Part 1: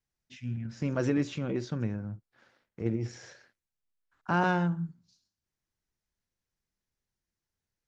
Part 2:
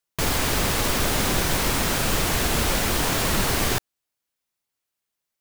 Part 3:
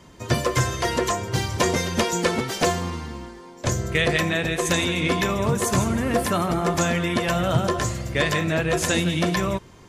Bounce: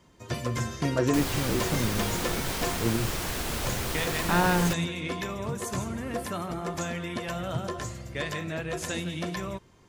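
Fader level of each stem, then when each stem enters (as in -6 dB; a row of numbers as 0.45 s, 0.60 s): +2.5 dB, -9.0 dB, -10.5 dB; 0.00 s, 0.95 s, 0.00 s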